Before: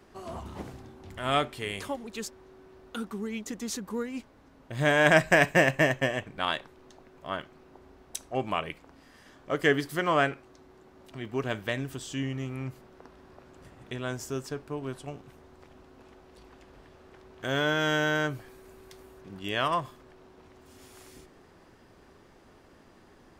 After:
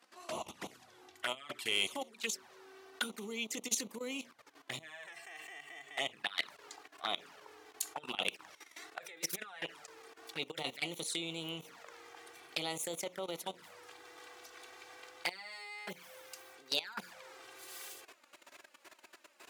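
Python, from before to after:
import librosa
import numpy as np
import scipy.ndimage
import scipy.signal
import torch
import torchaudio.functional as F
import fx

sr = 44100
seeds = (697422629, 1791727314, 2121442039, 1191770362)

y = fx.speed_glide(x, sr, from_pct=94, to_pct=146)
y = fx.low_shelf(y, sr, hz=210.0, db=4.5)
y = fx.over_compress(y, sr, threshold_db=-33.0, ratio=-1.0)
y = fx.lowpass(y, sr, hz=2000.0, slope=6)
y = fx.hum_notches(y, sr, base_hz=60, count=10)
y = fx.level_steps(y, sr, step_db=17)
y = fx.env_flanger(y, sr, rest_ms=4.3, full_db=-33.0)
y = scipy.signal.sosfilt(scipy.signal.bessel(2, 150.0, 'highpass', norm='mag', fs=sr, output='sos'), y)
y = np.diff(y, prepend=0.0)
y = fx.fold_sine(y, sr, drive_db=5, ceiling_db=-31.0)
y = y * librosa.db_to_amplitude(11.5)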